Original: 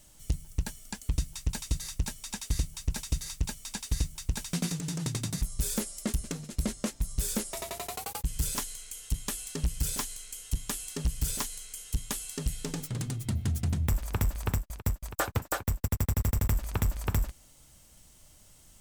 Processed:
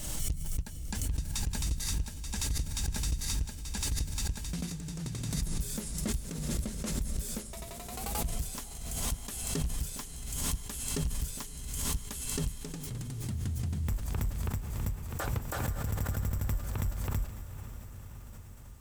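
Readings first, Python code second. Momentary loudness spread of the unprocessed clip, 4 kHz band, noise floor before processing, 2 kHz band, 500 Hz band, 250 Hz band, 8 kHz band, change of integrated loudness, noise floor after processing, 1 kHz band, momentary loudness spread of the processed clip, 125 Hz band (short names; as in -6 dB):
7 LU, -1.0 dB, -57 dBFS, -3.0 dB, -3.5 dB, -2.5 dB, -1.0 dB, -2.0 dB, -45 dBFS, -3.5 dB, 7 LU, -2.5 dB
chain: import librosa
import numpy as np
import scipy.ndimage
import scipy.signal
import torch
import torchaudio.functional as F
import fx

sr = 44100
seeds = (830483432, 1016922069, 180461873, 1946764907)

p1 = fx.low_shelf(x, sr, hz=220.0, db=4.5)
p2 = p1 + fx.echo_diffused(p1, sr, ms=527, feedback_pct=67, wet_db=-11.0, dry=0)
p3 = fx.pre_swell(p2, sr, db_per_s=34.0)
y = p3 * librosa.db_to_amplitude(-9.0)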